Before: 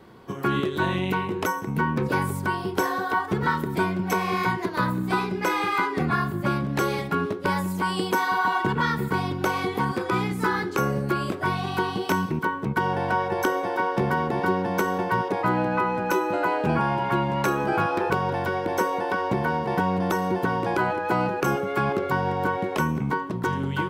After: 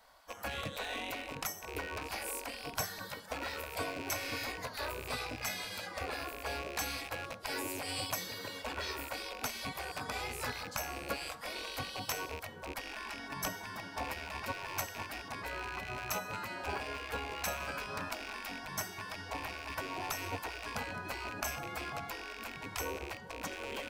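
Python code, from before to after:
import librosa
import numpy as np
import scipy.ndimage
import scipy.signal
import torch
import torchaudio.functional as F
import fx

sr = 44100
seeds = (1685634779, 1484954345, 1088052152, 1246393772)

y = fx.rattle_buzz(x, sr, strikes_db=-32.0, level_db=-25.0)
y = fx.band_shelf(y, sr, hz=1700.0, db=-8.0, octaves=2.4)
y = fx.spec_gate(y, sr, threshold_db=-15, keep='weak')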